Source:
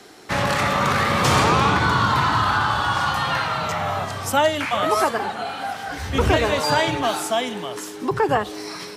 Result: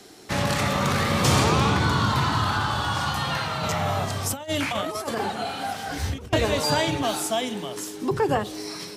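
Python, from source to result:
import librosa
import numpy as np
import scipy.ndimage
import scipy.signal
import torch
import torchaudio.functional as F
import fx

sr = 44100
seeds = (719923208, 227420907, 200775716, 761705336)

y = fx.peak_eq(x, sr, hz=1300.0, db=-8.0, octaves=2.5)
y = fx.hum_notches(y, sr, base_hz=60, count=9)
y = fx.over_compress(y, sr, threshold_db=-28.0, ratio=-0.5, at=(3.63, 6.33))
y = y * 10.0 ** (1.5 / 20.0)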